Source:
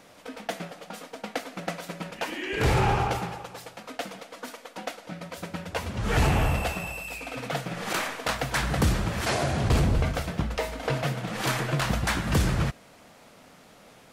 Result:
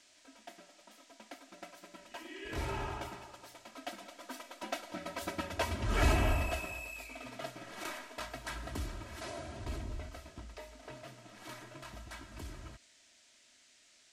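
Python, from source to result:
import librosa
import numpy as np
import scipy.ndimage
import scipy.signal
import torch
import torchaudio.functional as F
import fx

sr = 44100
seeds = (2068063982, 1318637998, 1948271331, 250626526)

y = fx.doppler_pass(x, sr, speed_mps=11, closest_m=7.0, pass_at_s=5.29)
y = y + 0.76 * np.pad(y, (int(3.1 * sr / 1000.0), 0))[:len(y)]
y = fx.dmg_noise_band(y, sr, seeds[0], low_hz=1600.0, high_hz=8000.0, level_db=-62.0)
y = y * 10.0 ** (-3.0 / 20.0)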